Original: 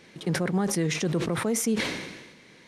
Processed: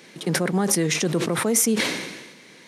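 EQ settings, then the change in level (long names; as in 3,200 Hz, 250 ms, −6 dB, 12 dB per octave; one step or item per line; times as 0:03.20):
high-pass filter 160 Hz 12 dB per octave
high-shelf EQ 7,000 Hz +8.5 dB
+4.5 dB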